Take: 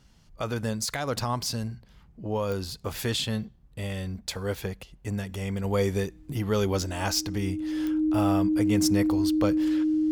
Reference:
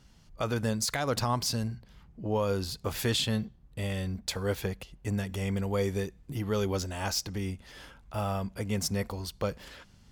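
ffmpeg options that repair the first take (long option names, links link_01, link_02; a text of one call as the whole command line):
ffmpeg -i in.wav -af "adeclick=threshold=4,bandreject=frequency=310:width=30,asetnsamples=nb_out_samples=441:pad=0,asendcmd='5.64 volume volume -4dB',volume=0dB" out.wav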